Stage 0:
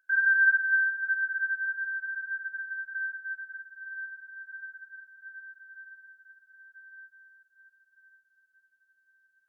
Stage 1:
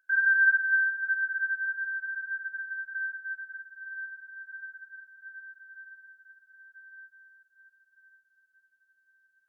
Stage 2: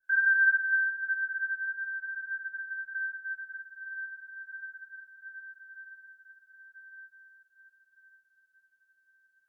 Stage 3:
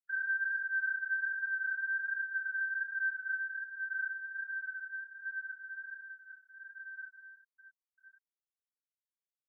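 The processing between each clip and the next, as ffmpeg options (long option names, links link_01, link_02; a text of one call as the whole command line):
ffmpeg -i in.wav -af anull out.wav
ffmpeg -i in.wav -af "adynamicequalizer=threshold=0.0126:dfrequency=1500:dqfactor=0.7:tfrequency=1500:tqfactor=0.7:attack=5:release=100:ratio=0.375:range=2.5:mode=cutabove:tftype=highshelf" out.wav
ffmpeg -i in.wav -af "afftfilt=real='re*gte(hypot(re,im),0.0158)':imag='im*gte(hypot(re,im),0.0158)':win_size=1024:overlap=0.75,areverse,acompressor=threshold=-36dB:ratio=12,areverse,flanger=delay=22.5:depth=4.5:speed=1.3,volume=7dB" out.wav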